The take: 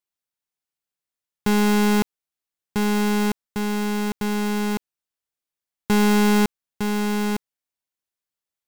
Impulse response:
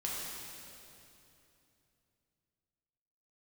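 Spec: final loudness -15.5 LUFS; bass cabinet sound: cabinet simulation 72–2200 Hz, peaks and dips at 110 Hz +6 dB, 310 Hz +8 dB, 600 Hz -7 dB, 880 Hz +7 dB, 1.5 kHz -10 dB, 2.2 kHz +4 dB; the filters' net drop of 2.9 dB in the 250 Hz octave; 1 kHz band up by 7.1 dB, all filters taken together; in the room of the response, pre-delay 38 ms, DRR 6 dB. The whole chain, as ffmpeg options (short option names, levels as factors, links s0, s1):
-filter_complex "[0:a]equalizer=f=250:t=o:g=-5,equalizer=f=1000:t=o:g=4.5,asplit=2[s0][s1];[1:a]atrim=start_sample=2205,adelay=38[s2];[s1][s2]afir=irnorm=-1:irlink=0,volume=0.335[s3];[s0][s3]amix=inputs=2:normalize=0,highpass=f=72:w=0.5412,highpass=f=72:w=1.3066,equalizer=f=110:t=q:w=4:g=6,equalizer=f=310:t=q:w=4:g=8,equalizer=f=600:t=q:w=4:g=-7,equalizer=f=880:t=q:w=4:g=7,equalizer=f=1500:t=q:w=4:g=-10,equalizer=f=2200:t=q:w=4:g=4,lowpass=f=2200:w=0.5412,lowpass=f=2200:w=1.3066,volume=2.37"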